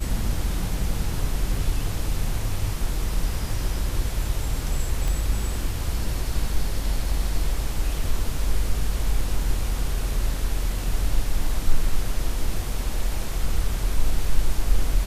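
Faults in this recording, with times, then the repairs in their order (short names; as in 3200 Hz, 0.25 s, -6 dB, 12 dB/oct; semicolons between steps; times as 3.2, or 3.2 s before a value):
5.08 pop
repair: de-click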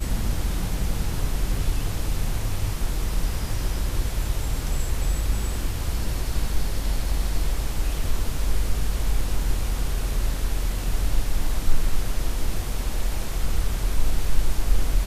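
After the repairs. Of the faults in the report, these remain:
none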